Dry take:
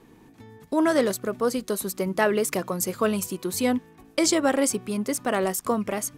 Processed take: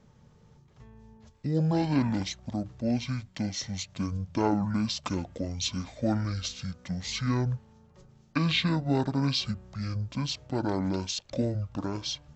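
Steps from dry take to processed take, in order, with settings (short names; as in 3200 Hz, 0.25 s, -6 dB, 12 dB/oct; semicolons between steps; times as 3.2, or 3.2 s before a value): speed mistake 15 ips tape played at 7.5 ips; gain -5 dB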